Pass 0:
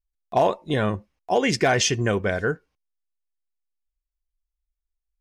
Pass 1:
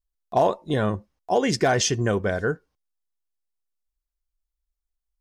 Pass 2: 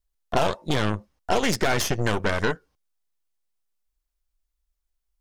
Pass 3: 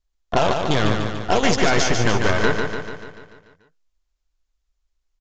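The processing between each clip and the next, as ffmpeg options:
ffmpeg -i in.wav -af "equalizer=frequency=2400:width_type=o:width=0.76:gain=-7.5" out.wav
ffmpeg -i in.wav -filter_complex "[0:a]acrossover=split=700|1900[link_01][link_02][link_03];[link_01]acompressor=threshold=-30dB:ratio=4[link_04];[link_02]acompressor=threshold=-35dB:ratio=4[link_05];[link_03]acompressor=threshold=-34dB:ratio=4[link_06];[link_04][link_05][link_06]amix=inputs=3:normalize=0,aeval=exprs='0.188*(cos(1*acos(clip(val(0)/0.188,-1,1)))-cos(1*PI/2))+0.0335*(cos(8*acos(clip(val(0)/0.188,-1,1)))-cos(8*PI/2))':channel_layout=same,volume=4.5dB" out.wav
ffmpeg -i in.wav -filter_complex "[0:a]asplit=2[link_01][link_02];[link_02]aecho=0:1:146|292|438|584|730|876|1022|1168:0.562|0.326|0.189|0.11|0.0636|0.0369|0.0214|0.0124[link_03];[link_01][link_03]amix=inputs=2:normalize=0,aresample=16000,aresample=44100,volume=3.5dB" out.wav

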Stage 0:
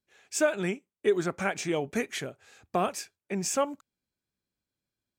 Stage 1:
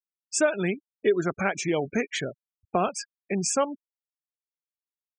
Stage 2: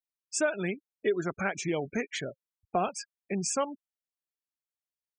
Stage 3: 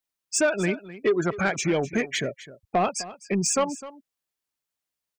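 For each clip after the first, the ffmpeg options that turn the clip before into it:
ffmpeg -i in.wav -filter_complex "[0:a]afftfilt=real='re*gte(hypot(re,im),0.0178)':imag='im*gte(hypot(re,im),0.0178)':win_size=1024:overlap=0.75,asplit=2[link_01][link_02];[link_02]acompressor=threshold=-34dB:ratio=6,volume=1.5dB[link_03];[link_01][link_03]amix=inputs=2:normalize=0" out.wav
ffmpeg -i in.wav -af "flanger=delay=0.2:depth=1.9:regen=77:speed=0.61:shape=triangular" out.wav
ffmpeg -i in.wav -af "asoftclip=type=tanh:threshold=-22.5dB,aecho=1:1:255:0.15,volume=8dB" out.wav

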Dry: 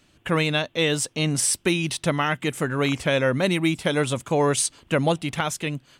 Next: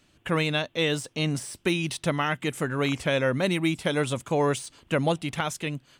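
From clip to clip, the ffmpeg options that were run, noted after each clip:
ffmpeg -i in.wav -af "deesser=0.5,volume=-3dB" out.wav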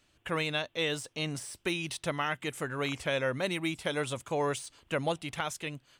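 ffmpeg -i in.wav -af "equalizer=frequency=200:width_type=o:width=1.6:gain=-6.5,volume=-4.5dB" out.wav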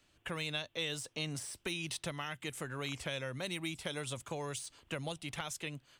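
ffmpeg -i in.wav -filter_complex "[0:a]acrossover=split=140|3000[link_01][link_02][link_03];[link_02]acompressor=threshold=-37dB:ratio=6[link_04];[link_01][link_04][link_03]amix=inputs=3:normalize=0,volume=-1.5dB" out.wav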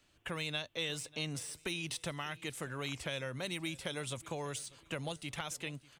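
ffmpeg -i in.wav -af "aecho=1:1:592|1184|1776:0.0841|0.0303|0.0109" out.wav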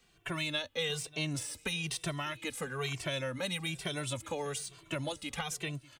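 ffmpeg -i in.wav -filter_complex "[0:a]asplit=2[link_01][link_02];[link_02]adelay=2.1,afreqshift=-1.1[link_03];[link_01][link_03]amix=inputs=2:normalize=1,volume=6.5dB" out.wav

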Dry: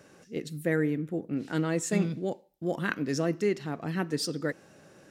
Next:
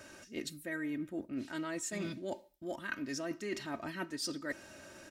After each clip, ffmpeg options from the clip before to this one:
ffmpeg -i in.wav -af "equalizer=frequency=340:width_type=o:width=2.1:gain=-7.5,aecho=1:1:3.2:0.72,areverse,acompressor=threshold=-40dB:ratio=10,areverse,volume=4.5dB" out.wav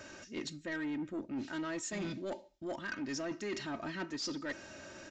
ffmpeg -i in.wav -af "asoftclip=type=tanh:threshold=-35.5dB,aresample=16000,aresample=44100,volume=3dB" out.wav

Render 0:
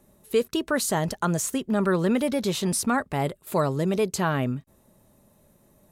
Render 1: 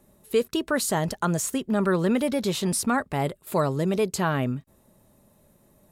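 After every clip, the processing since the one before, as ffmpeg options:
ffmpeg -i in.wav -af "bandreject=frequency=6100:width=24" out.wav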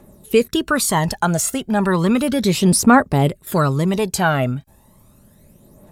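ffmpeg -i in.wav -af "aphaser=in_gain=1:out_gain=1:delay=1.5:decay=0.55:speed=0.34:type=triangular,volume=6.5dB" out.wav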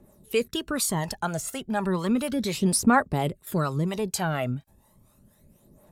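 ffmpeg -i in.wav -filter_complex "[0:a]acrossover=split=480[link_01][link_02];[link_01]aeval=exprs='val(0)*(1-0.7/2+0.7/2*cos(2*PI*4.2*n/s))':channel_layout=same[link_03];[link_02]aeval=exprs='val(0)*(1-0.7/2-0.7/2*cos(2*PI*4.2*n/s))':channel_layout=same[link_04];[link_03][link_04]amix=inputs=2:normalize=0,volume=-5.5dB" out.wav

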